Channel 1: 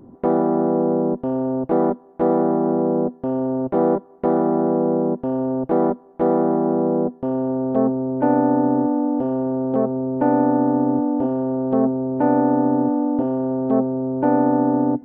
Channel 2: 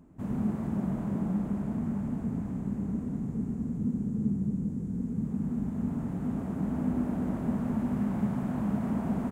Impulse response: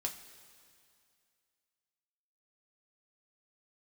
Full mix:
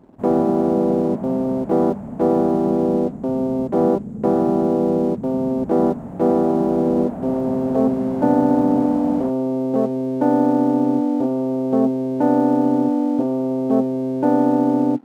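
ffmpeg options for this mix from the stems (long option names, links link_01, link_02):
-filter_complex "[0:a]aeval=exprs='sgn(val(0))*max(abs(val(0))-0.00631,0)':channel_layout=same,highpass=130,equalizer=frequency=1600:width=0.5:gain=-5,volume=2.5dB[link_01];[1:a]equalizer=frequency=630:width=0.99:gain=12.5,volume=-1.5dB[link_02];[link_01][link_02]amix=inputs=2:normalize=0"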